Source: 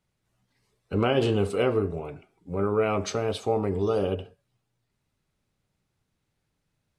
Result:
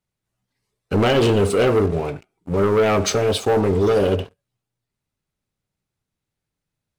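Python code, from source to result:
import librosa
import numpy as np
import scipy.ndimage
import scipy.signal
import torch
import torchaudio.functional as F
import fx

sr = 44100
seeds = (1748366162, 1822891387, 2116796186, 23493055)

y = fx.high_shelf(x, sr, hz=6500.0, db=4.5)
y = fx.leveller(y, sr, passes=3)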